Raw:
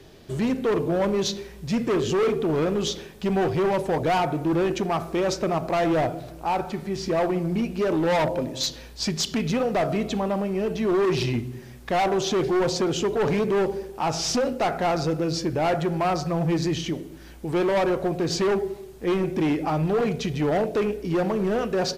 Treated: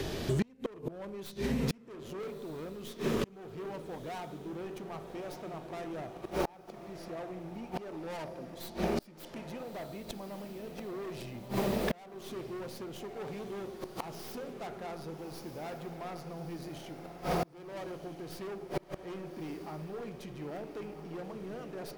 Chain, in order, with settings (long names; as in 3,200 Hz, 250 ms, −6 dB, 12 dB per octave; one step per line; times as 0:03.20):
stylus tracing distortion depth 0.15 ms
on a send: feedback delay with all-pass diffusion 1,283 ms, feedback 55%, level −7 dB
on the sum: gate with flip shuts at −19 dBFS, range −34 dB
downward compressor 3 to 1, threshold −49 dBFS, peak gain reduction 19 dB
level +15 dB